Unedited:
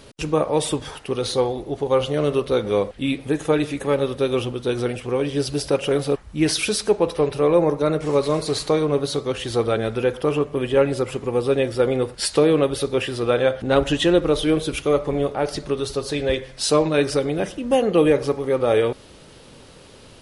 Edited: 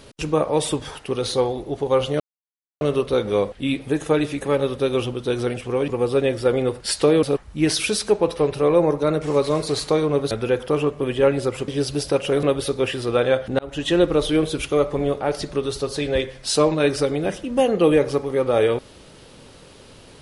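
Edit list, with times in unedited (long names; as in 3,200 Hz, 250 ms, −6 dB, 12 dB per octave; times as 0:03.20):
0:02.20: splice in silence 0.61 s
0:05.27–0:06.02: swap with 0:11.22–0:12.57
0:09.10–0:09.85: remove
0:13.73–0:14.13: fade in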